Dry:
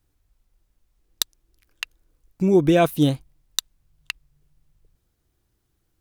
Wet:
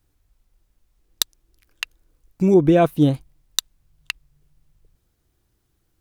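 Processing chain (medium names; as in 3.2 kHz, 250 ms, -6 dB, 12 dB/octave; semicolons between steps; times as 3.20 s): 2.54–3.14 s: treble shelf 2.2 kHz -11.5 dB; trim +2.5 dB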